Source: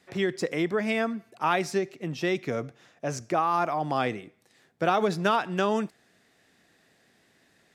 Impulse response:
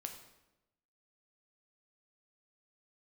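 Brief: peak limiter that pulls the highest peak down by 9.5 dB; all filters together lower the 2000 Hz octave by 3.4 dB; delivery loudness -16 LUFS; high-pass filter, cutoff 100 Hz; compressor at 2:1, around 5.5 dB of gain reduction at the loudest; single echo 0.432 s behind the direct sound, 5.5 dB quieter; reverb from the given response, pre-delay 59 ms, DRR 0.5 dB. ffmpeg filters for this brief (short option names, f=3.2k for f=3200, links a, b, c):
-filter_complex "[0:a]highpass=100,equalizer=f=2k:t=o:g=-4.5,acompressor=threshold=-30dB:ratio=2,alimiter=level_in=1.5dB:limit=-24dB:level=0:latency=1,volume=-1.5dB,aecho=1:1:432:0.531,asplit=2[a][b];[1:a]atrim=start_sample=2205,adelay=59[c];[b][c]afir=irnorm=-1:irlink=0,volume=2dB[d];[a][d]amix=inputs=2:normalize=0,volume=17dB"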